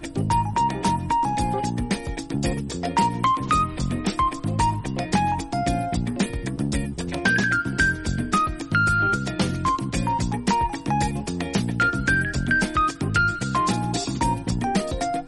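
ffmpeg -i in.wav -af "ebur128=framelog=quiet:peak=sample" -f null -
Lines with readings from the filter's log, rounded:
Integrated loudness:
  I:         -23.4 LUFS
  Threshold: -33.4 LUFS
Loudness range:
  LRA:         1.9 LU
  Threshold: -43.3 LUFS
  LRA low:   -24.2 LUFS
  LRA high:  -22.3 LUFS
Sample peak:
  Peak:       -6.3 dBFS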